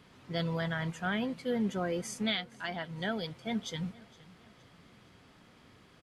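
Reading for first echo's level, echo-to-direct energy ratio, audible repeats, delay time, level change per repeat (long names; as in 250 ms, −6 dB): −22.5 dB, −21.5 dB, 2, 464 ms, −6.5 dB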